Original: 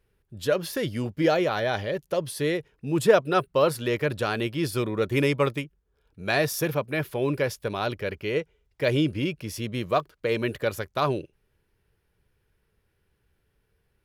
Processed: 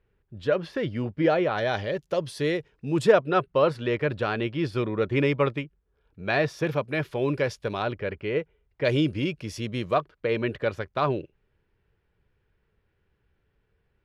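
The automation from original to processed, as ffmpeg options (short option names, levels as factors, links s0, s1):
-af "asetnsamples=n=441:p=0,asendcmd='1.58 lowpass f 6400;3.12 lowpass f 3200;6.67 lowpass f 5800;7.82 lowpass f 2600;8.85 lowpass f 6900;9.94 lowpass f 3200',lowpass=2700"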